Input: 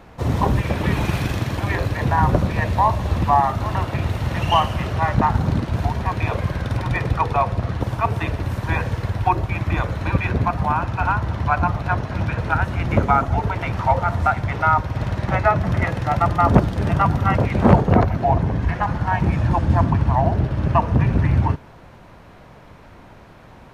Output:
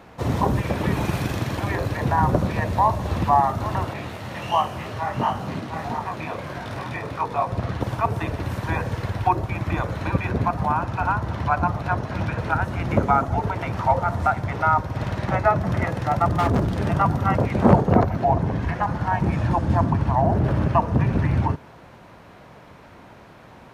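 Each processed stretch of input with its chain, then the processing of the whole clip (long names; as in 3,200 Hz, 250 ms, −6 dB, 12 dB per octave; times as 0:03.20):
0:03.93–0:07.50: high-pass filter 180 Hz 6 dB per octave + single-tap delay 713 ms −7 dB + micro pitch shift up and down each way 50 cents
0:16.28–0:16.76: low-shelf EQ 290 Hz +6.5 dB + hard clipping −14.5 dBFS
0:20.22–0:20.67: parametric band 4,000 Hz −4.5 dB 1.9 octaves + envelope flattener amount 70%
whole clip: high-pass filter 120 Hz 6 dB per octave; dynamic equaliser 2,700 Hz, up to −6 dB, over −34 dBFS, Q 0.72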